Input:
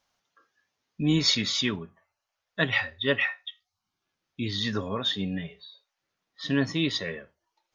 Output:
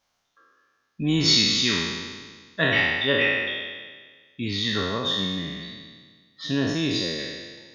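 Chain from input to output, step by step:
peak hold with a decay on every bin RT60 1.58 s
0:04.97–0:07.19: dynamic equaliser 2,100 Hz, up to −5 dB, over −36 dBFS, Q 0.78

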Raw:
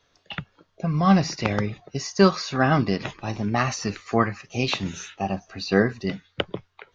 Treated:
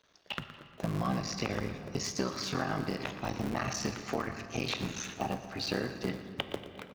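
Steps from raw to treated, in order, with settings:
sub-harmonics by changed cycles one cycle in 3, muted
low-shelf EQ 72 Hz −10 dB
in parallel at +2 dB: brickwall limiter −15.5 dBFS, peak gain reduction 11 dB
on the sum: downward compressor, threshold −22 dBFS, peak gain reduction 12.5 dB
repeating echo 118 ms, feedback 53%, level −14 dB
on a send at −10 dB: convolution reverb RT60 3.1 s, pre-delay 6 ms
on the sum: level −7.5 dB

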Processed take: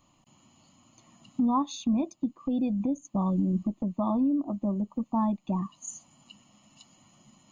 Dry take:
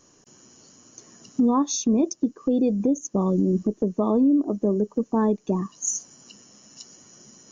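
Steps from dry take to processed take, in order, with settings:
phaser with its sweep stopped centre 1,600 Hz, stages 6
level −1 dB

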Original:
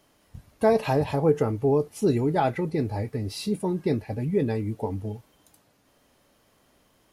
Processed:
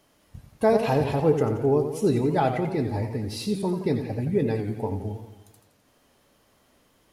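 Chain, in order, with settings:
feedback echo with a swinging delay time 86 ms, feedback 56%, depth 114 cents, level −8.5 dB

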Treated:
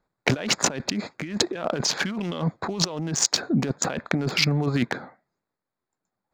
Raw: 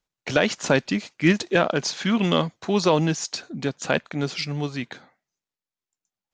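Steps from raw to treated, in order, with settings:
adaptive Wiener filter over 15 samples
low-shelf EQ 72 Hz −7.5 dB
compressor whose output falls as the input rises −32 dBFS, ratio −1
level +6 dB

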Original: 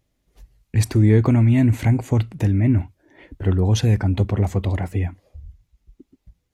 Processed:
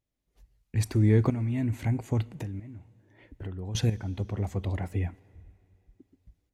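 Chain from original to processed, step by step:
0:02.24–0:03.75: downward compressor 6 to 1, threshold −27 dBFS, peak gain reduction 13.5 dB
shaped tremolo saw up 0.77 Hz, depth 70%
on a send: convolution reverb RT60 2.9 s, pre-delay 8 ms, DRR 22 dB
on the sum: level −6 dB

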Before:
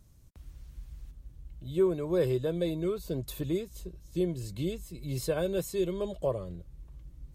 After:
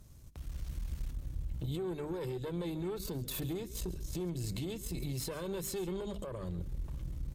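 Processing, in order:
mains-hum notches 50/100/150/200/250/300 Hz
downward compressor 4 to 1, threshold −42 dBFS, peak gain reduction 17.5 dB
brickwall limiter −40 dBFS, peak gain reduction 9.5 dB
on a send: single-tap delay 138 ms −17 dB
on the sum: tube saturation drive 43 dB, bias 0.55
automatic gain control gain up to 7.5 dB
dynamic equaliser 660 Hz, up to −7 dB, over −60 dBFS, Q 1.8
level +6.5 dB

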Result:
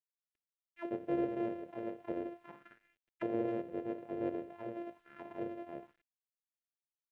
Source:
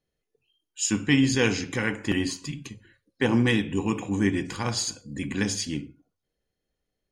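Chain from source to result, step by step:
samples sorted by size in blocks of 128 samples
dynamic equaliser 1,000 Hz, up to +3 dB, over −45 dBFS, Q 5.2
envelope filter 520–2,300 Hz, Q 3.4, down, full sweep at −24 dBFS
bit reduction 11 bits
drawn EQ curve 440 Hz 0 dB, 1,100 Hz −13 dB, 1,700 Hz −2 dB, 2,800 Hz −2 dB, 4,600 Hz −16 dB
level −1.5 dB

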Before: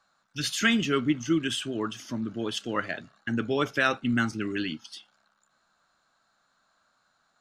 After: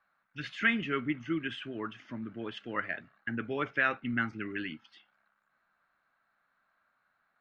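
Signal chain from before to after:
low-pass with resonance 2,100 Hz, resonance Q 2.5
level −8 dB

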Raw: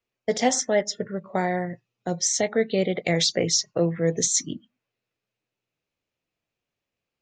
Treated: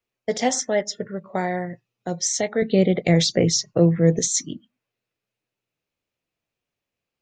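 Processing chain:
0:02.62–0:04.19: low-shelf EQ 360 Hz +11 dB

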